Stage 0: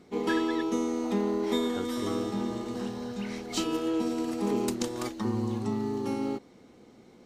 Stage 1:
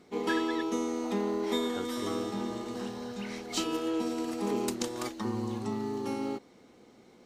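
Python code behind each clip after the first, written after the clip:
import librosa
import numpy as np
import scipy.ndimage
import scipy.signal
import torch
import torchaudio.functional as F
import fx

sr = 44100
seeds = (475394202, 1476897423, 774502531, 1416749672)

y = fx.low_shelf(x, sr, hz=300.0, db=-6.0)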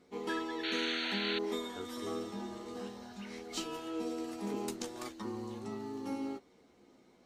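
y = fx.chorus_voices(x, sr, voices=6, hz=0.3, base_ms=13, depth_ms=2.3, mix_pct=35)
y = fx.spec_paint(y, sr, seeds[0], shape='noise', start_s=0.63, length_s=0.76, low_hz=1300.0, high_hz=4500.0, level_db=-33.0)
y = y * librosa.db_to_amplitude(-4.0)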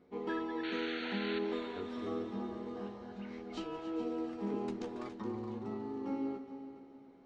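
y = fx.spacing_loss(x, sr, db_at_10k=30)
y = fx.echo_heads(y, sr, ms=140, heads='second and third', feedback_pct=41, wet_db=-13.0)
y = y * librosa.db_to_amplitude(1.5)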